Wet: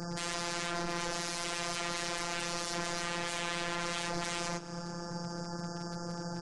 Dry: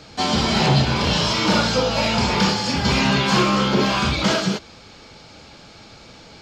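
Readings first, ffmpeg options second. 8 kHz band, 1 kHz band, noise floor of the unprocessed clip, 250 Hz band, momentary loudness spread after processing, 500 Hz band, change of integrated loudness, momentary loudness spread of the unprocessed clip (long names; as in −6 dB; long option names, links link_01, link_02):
−7.5 dB, −15.5 dB, −45 dBFS, −19.5 dB, 5 LU, −16.0 dB, −17.0 dB, 3 LU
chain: -filter_complex "[0:a]highpass=70,afftfilt=real='re*(1-between(b*sr/4096,1800,4600))':imag='im*(1-between(b*sr/4096,1800,4600))':win_size=4096:overlap=0.75,lowshelf=frequency=170:gain=12,acompressor=threshold=-27dB:ratio=3,aeval=exprs='0.0211*(abs(mod(val(0)/0.0211+3,4)-2)-1)':channel_layout=same,afftfilt=real='hypot(re,im)*cos(PI*b)':imag='0':win_size=1024:overlap=0.75,volume=23.5dB,asoftclip=hard,volume=-23.5dB,asplit=5[link_01][link_02][link_03][link_04][link_05];[link_02]adelay=220,afreqshift=140,volume=-21dB[link_06];[link_03]adelay=440,afreqshift=280,volume=-26.5dB[link_07];[link_04]adelay=660,afreqshift=420,volume=-32dB[link_08];[link_05]adelay=880,afreqshift=560,volume=-37.5dB[link_09];[link_01][link_06][link_07][link_08][link_09]amix=inputs=5:normalize=0,aresample=22050,aresample=44100,volume=6.5dB" -ar 44100 -c:a aac -b:a 128k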